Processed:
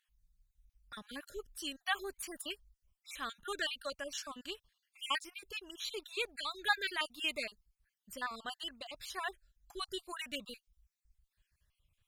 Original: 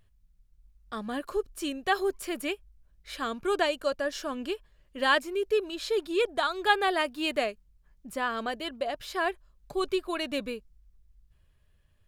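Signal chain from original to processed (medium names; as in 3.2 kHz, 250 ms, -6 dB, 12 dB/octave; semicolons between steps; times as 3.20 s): random holes in the spectrogram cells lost 43%; amplifier tone stack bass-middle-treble 5-5-5; trim +5.5 dB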